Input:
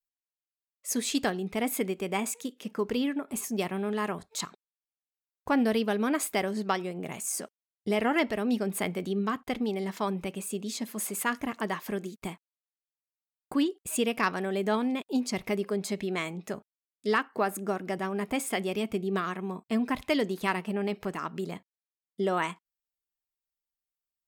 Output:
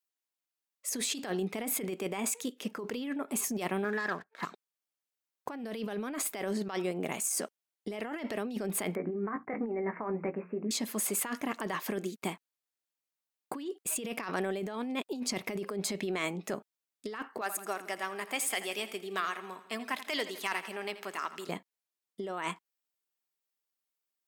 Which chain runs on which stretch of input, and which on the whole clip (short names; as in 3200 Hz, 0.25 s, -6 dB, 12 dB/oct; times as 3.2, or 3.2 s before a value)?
3.84–4.43 ladder low-pass 1800 Hz, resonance 75% + sample leveller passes 2
8.95–10.71 steep low-pass 2200 Hz 72 dB/oct + notches 60/120/180/240/300/360 Hz + doubler 18 ms -9 dB
17.41–21.49 HPF 1500 Hz 6 dB/oct + hard clip -23 dBFS + feedback echo 83 ms, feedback 59%, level -15 dB
whole clip: HPF 210 Hz 12 dB/oct; negative-ratio compressor -34 dBFS, ratio -1